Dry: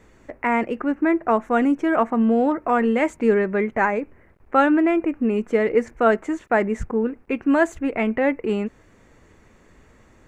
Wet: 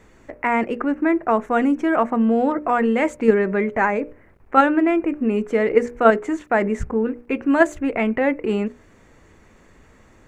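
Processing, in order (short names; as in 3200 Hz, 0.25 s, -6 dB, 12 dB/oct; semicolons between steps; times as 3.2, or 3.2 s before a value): notches 60/120/180/240/300/360/420/480/540/600 Hz; in parallel at -0.5 dB: level quantiser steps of 15 dB; on the sum: gain -1 dB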